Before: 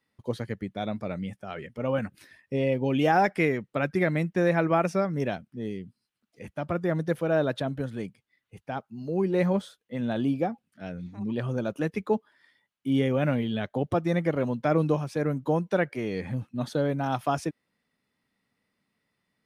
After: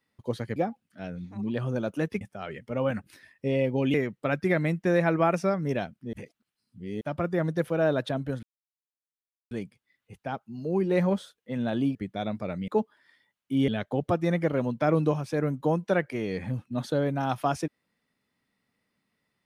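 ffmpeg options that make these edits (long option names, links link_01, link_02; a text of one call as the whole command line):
ffmpeg -i in.wav -filter_complex "[0:a]asplit=10[link_01][link_02][link_03][link_04][link_05][link_06][link_07][link_08][link_09][link_10];[link_01]atrim=end=0.562[link_11];[link_02]atrim=start=10.378:end=12.032[link_12];[link_03]atrim=start=1.288:end=3.022[link_13];[link_04]atrim=start=3.448:end=5.642[link_14];[link_05]atrim=start=5.638:end=6.522,asetpts=PTS-STARTPTS,areverse[link_15];[link_06]atrim=start=6.518:end=7.94,asetpts=PTS-STARTPTS,afade=type=out:start_time=1.418:duration=0.004:curve=hsin,apad=pad_dur=1.08[link_16];[link_07]atrim=start=7.94:end=10.382,asetpts=PTS-STARTPTS,afade=type=in:duration=0.004:curve=hsin[link_17];[link_08]atrim=start=0.558:end=1.292[link_18];[link_09]atrim=start=12.028:end=13.032[link_19];[link_10]atrim=start=13.508[link_20];[link_11][link_12]acrossfade=duration=0.004:curve1=hsin:curve2=hsin[link_21];[link_21][link_13]acrossfade=duration=0.004:curve1=hsin:curve2=hsin[link_22];[link_22][link_14]acrossfade=duration=0.004:curve1=hsin:curve2=hsin[link_23];[link_23][link_15]acrossfade=duration=0.004:curve1=hsin:curve2=hsin[link_24];[link_16][link_17]concat=n=2:v=0:a=1[link_25];[link_24][link_25]acrossfade=duration=0.004:curve1=hsin:curve2=hsin[link_26];[link_26][link_18]acrossfade=duration=0.004:curve1=hsin:curve2=hsin[link_27];[link_27][link_19]acrossfade=duration=0.004:curve1=hsin:curve2=hsin[link_28];[link_28][link_20]acrossfade=duration=0.004:curve1=hsin:curve2=hsin" out.wav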